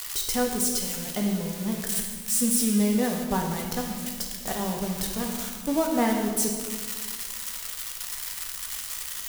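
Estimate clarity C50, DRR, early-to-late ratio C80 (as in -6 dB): 3.5 dB, 0.0 dB, 5.5 dB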